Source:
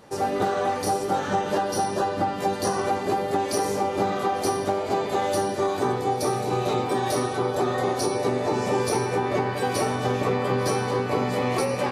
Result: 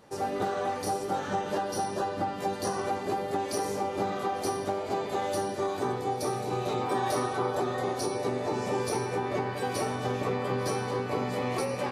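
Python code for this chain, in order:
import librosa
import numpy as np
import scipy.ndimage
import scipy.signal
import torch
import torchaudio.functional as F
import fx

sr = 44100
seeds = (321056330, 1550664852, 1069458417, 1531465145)

y = fx.peak_eq(x, sr, hz=1100.0, db=5.0, octaves=1.6, at=(6.81, 7.6))
y = y * 10.0 ** (-6.0 / 20.0)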